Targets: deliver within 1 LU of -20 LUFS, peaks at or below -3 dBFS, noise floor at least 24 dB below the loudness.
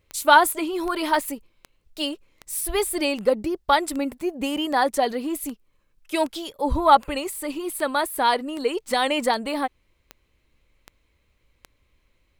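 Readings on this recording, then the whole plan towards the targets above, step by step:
clicks 16; loudness -23.5 LUFS; peak -2.5 dBFS; loudness target -20.0 LUFS
-> de-click; gain +3.5 dB; limiter -3 dBFS

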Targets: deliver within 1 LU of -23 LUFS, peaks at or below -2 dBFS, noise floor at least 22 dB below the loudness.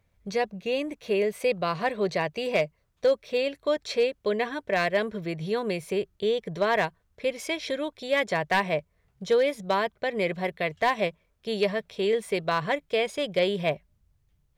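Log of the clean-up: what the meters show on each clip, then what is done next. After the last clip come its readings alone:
clipped 0.2%; flat tops at -15.5 dBFS; loudness -27.5 LUFS; peak -15.5 dBFS; loudness target -23.0 LUFS
-> clip repair -15.5 dBFS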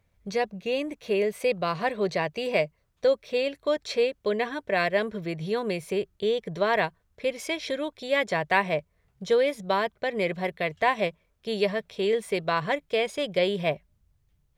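clipped 0.0%; loudness -27.5 LUFS; peak -7.5 dBFS; loudness target -23.0 LUFS
-> gain +4.5 dB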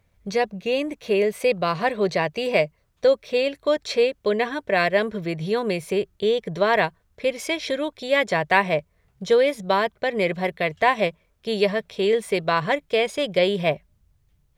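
loudness -23.0 LUFS; peak -3.0 dBFS; noise floor -66 dBFS

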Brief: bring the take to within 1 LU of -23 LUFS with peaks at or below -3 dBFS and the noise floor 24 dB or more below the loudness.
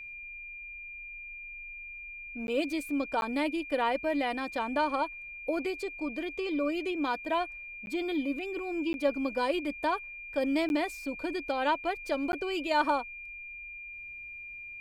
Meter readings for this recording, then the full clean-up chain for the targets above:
dropouts 6; longest dropout 11 ms; steady tone 2400 Hz; tone level -41 dBFS; loudness -32.5 LUFS; peak -15.0 dBFS; loudness target -23.0 LUFS
-> interpolate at 2.47/3.21/7.86/8.93/10.69/12.32, 11 ms; notch 2400 Hz, Q 30; gain +9.5 dB

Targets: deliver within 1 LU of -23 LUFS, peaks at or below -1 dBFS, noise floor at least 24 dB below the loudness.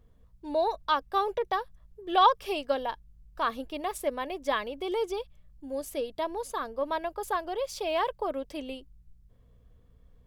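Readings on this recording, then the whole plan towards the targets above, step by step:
hum 60 Hz; harmonics up to 180 Hz; hum level -61 dBFS; loudness -30.5 LUFS; peak -9.5 dBFS; loudness target -23.0 LUFS
-> de-hum 60 Hz, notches 3; gain +7.5 dB

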